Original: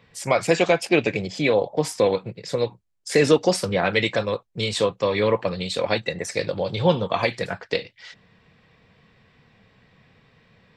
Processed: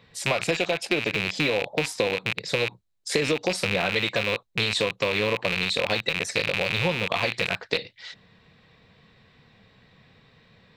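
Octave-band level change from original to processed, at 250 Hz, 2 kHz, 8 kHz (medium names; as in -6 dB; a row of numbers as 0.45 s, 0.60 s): -6.0 dB, +2.5 dB, -2.0 dB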